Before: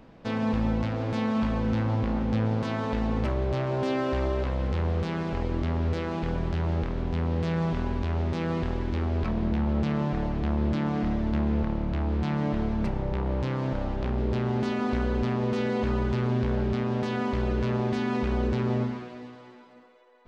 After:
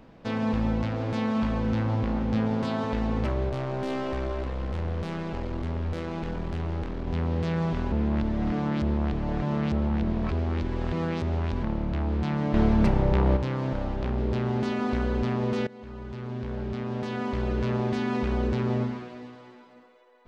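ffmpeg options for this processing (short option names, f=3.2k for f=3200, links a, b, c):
-filter_complex "[0:a]asettb=1/sr,asplit=3[a][b][c];[a]atrim=end=2.334[d];[b]atrim=start=2.33:end=2.84,asetpts=PTS-STARTPTS,afade=t=in:d=0.004:c=qsin,afade=t=out:st=0.506:d=0.004:c=qsin,asplit=2[e][f];[f]adelay=23,volume=-6.5dB[g];[e][g]amix=inputs=2:normalize=0,atrim=end_sample=22491[h];[c]atrim=start=2.836[i];[d][h]acrossfade=d=0.004:c1=hsin:c2=qsin[j];[j][i]acrossfade=d=0.004:c1=qsin:c2=hsin,asettb=1/sr,asplit=3[k][l][m];[k]atrim=end=3.494[n];[l]atrim=start=3.49:end=7.08,asetpts=PTS-STARTPTS,afade=t=in:d=0.004:c=qsin,afade=t=out:st=3.586:d=0.004:c=qsin,aeval=exprs='(tanh(15.8*val(0)+0.5)-tanh(0.5))/15.8':c=same[o];[m]atrim=start=7.076[p];[n][o]acrossfade=d=0.004:c1=hsin:c2=qsin[q];[q][p]acrossfade=d=0.004:c1=qsin:c2=hsin,asettb=1/sr,asplit=3[r][s][t];[r]atrim=end=12.544[u];[s]atrim=start=12.54:end=13.37,asetpts=PTS-STARTPTS,afade=t=in:d=0.004:c=qsin,afade=t=out:st=0.826:d=0.004:c=qsin,acontrast=74[v];[t]atrim=start=13.366[w];[u][v]acrossfade=d=0.004:c1=hsin:c2=qsin[x];[x][w]acrossfade=d=0.004:c1=qsin:c2=hsin,asplit=4[y][z][aa][ab];[y]atrim=end=7.922[ac];[z]atrim=start=7.918:end=11.632,asetpts=PTS-STARTPTS,areverse[ad];[aa]atrim=start=11.628:end=15.67,asetpts=PTS-STARTPTS,afade=t=out:st=4.038:d=0.004:c=hsin:silence=0.0841395[ae];[ab]atrim=start=15.67,asetpts=PTS-STARTPTS,afade=t=in:d=2.02:silence=0.0841395[af];[ac][ad]acrossfade=d=0.004:c1=hsin:c2=hsin[ag];[ae][af]concat=n=2:v=0:a=1[ah];[ag][ah]acrossfade=d=0.004:c1=hsin:c2=hsin"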